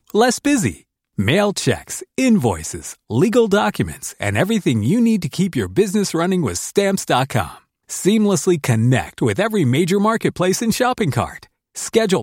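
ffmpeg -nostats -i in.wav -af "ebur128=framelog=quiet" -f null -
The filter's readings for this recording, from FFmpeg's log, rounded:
Integrated loudness:
  I:         -18.1 LUFS
  Threshold: -28.3 LUFS
Loudness range:
  LRA:         1.3 LU
  Threshold: -38.2 LUFS
  LRA low:   -18.8 LUFS
  LRA high:  -17.5 LUFS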